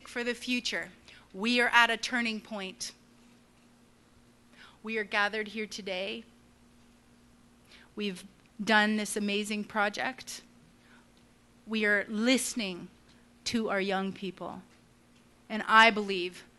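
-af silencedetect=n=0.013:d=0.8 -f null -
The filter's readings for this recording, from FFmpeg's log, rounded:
silence_start: 2.90
silence_end: 4.85 | silence_duration: 1.95
silence_start: 6.20
silence_end: 7.98 | silence_duration: 1.77
silence_start: 10.39
silence_end: 11.70 | silence_duration: 1.31
silence_start: 14.57
silence_end: 15.50 | silence_duration: 0.93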